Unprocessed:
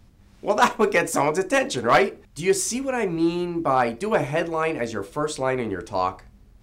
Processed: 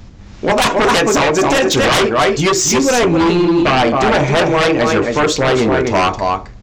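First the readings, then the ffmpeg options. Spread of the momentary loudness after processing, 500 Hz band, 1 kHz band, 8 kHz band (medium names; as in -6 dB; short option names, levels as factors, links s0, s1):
3 LU, +9.5 dB, +8.5 dB, +11.5 dB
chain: -af "aresample=16000,aresample=44100,aecho=1:1:268:0.422,alimiter=limit=0.224:level=0:latency=1:release=271,aeval=exprs='0.224*sin(PI/2*2.51*val(0)/0.224)':c=same,volume=1.68"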